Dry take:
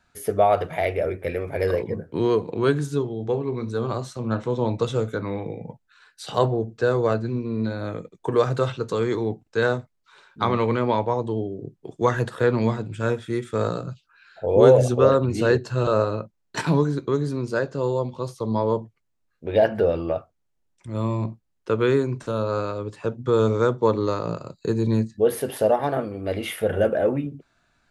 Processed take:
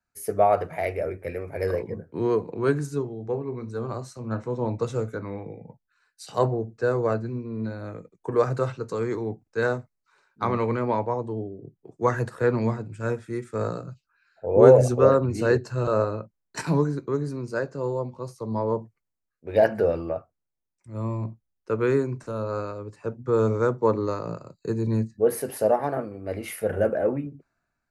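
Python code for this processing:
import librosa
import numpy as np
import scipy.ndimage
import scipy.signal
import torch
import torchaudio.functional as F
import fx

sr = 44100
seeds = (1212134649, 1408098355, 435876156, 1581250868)

y = fx.high_shelf(x, sr, hz=2600.0, db=6.5, at=(18.79, 20.09))
y = fx.peak_eq(y, sr, hz=3400.0, db=-14.5, octaves=0.35)
y = fx.notch(y, sr, hz=2800.0, q=30.0)
y = fx.band_widen(y, sr, depth_pct=40)
y = y * librosa.db_to_amplitude(-3.0)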